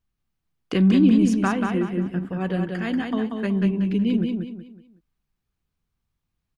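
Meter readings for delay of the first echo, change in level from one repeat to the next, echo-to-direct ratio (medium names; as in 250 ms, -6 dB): 186 ms, -9.5 dB, -4.0 dB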